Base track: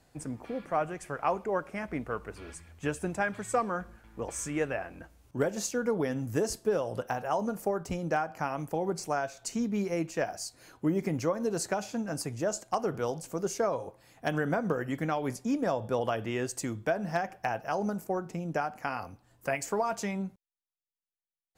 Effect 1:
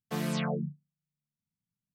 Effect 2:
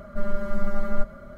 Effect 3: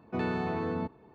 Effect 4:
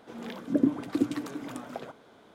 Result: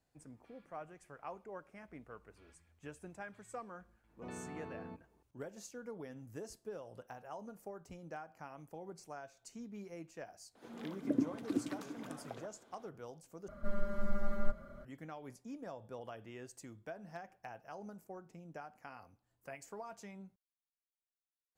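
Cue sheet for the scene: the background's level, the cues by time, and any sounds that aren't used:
base track −17.5 dB
0:04.09: mix in 3 −16 dB
0:10.55: mix in 4 −9 dB
0:13.48: overwrite with 2 −9.5 dB
not used: 1

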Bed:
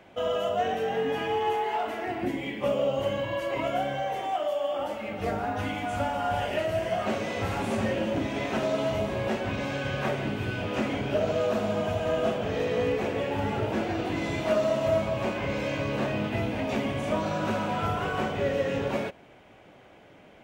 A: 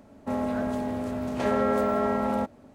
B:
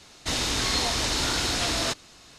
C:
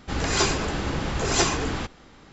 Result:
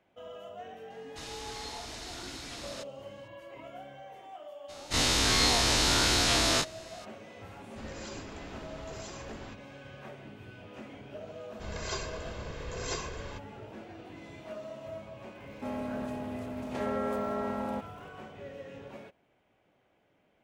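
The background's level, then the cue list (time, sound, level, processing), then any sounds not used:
bed −17.5 dB
0:00.90: mix in B −17 dB
0:04.68: mix in B −3 dB, fades 0.02 s + every bin's largest magnitude spread in time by 60 ms
0:07.68: mix in C −17.5 dB + brickwall limiter −17.5 dBFS
0:11.52: mix in C −15.5 dB + comb filter 1.9 ms, depth 61%
0:15.35: mix in A −8 dB + surface crackle 280 per second −48 dBFS

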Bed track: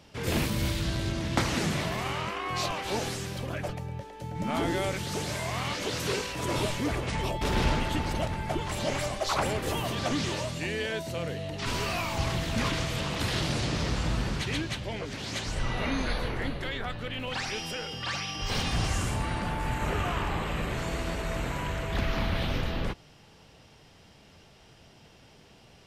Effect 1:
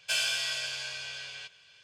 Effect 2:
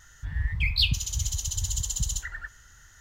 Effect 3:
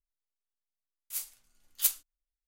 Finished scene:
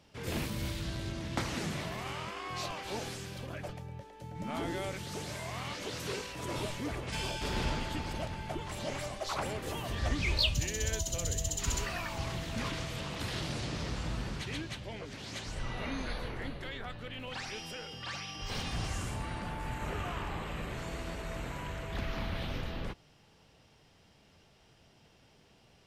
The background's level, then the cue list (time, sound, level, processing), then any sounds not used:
bed track −7.5 dB
0:01.99: mix in 1 −7 dB + downward compressor, threshold −45 dBFS
0:07.03: mix in 1 −12 dB
0:09.61: mix in 2 −5.5 dB + all-pass dispersion lows, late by 57 ms, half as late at 620 Hz
not used: 3

